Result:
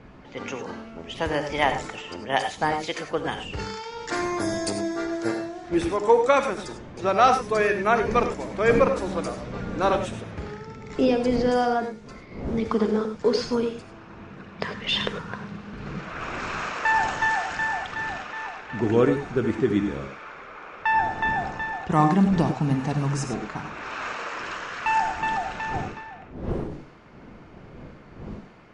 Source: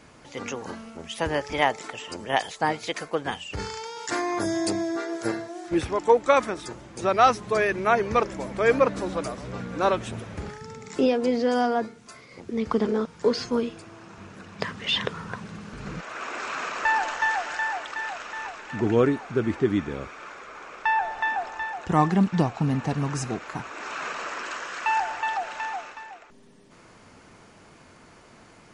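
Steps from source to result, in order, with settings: wind noise 310 Hz -41 dBFS; level-controlled noise filter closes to 2.6 kHz, open at -22 dBFS; gated-style reverb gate 120 ms rising, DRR 7 dB

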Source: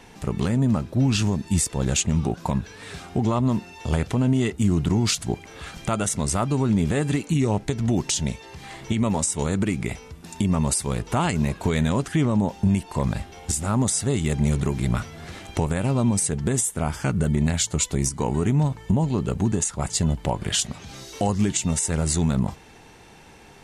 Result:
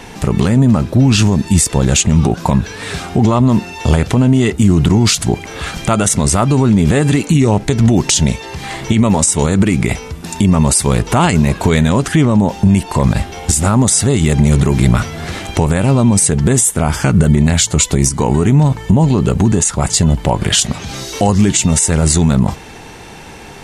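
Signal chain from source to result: loudness maximiser +15.5 dB; trim -1 dB

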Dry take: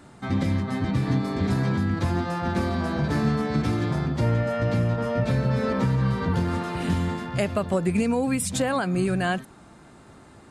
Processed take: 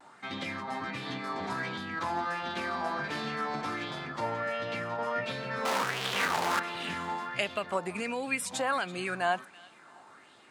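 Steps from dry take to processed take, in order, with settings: 5.65–6.60 s: one-bit comparator; frequency weighting A; vibrato 0.4 Hz 23 cents; on a send: thinning echo 333 ms, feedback 41%, level -22.5 dB; on the sum: sweeping bell 1.4 Hz 810–3500 Hz +11 dB; trim -6 dB

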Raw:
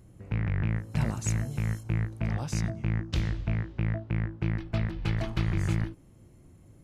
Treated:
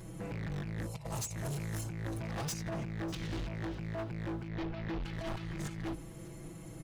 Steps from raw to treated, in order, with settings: bass shelf 370 Hz -6 dB; hum notches 50/100 Hz; comb 6.1 ms, depth 99%; compressor with a negative ratio -36 dBFS, ratio -0.5; 0.87–1.36 s: static phaser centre 660 Hz, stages 4; hard clipper -40 dBFS, distortion -5 dB; 4.48–5.03 s: boxcar filter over 5 samples; delay 599 ms -20.5 dB; trim +5 dB

